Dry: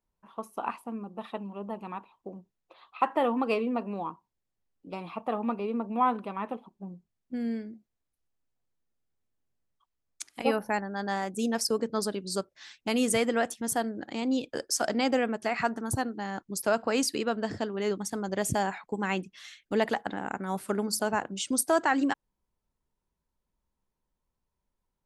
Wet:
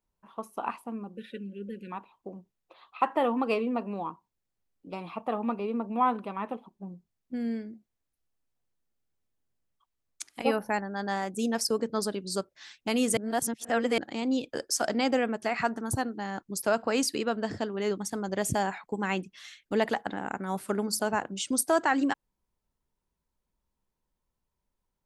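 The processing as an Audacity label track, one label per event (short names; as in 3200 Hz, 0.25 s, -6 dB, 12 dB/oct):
1.150000	1.910000	spectral delete 570–1400 Hz
13.170000	13.980000	reverse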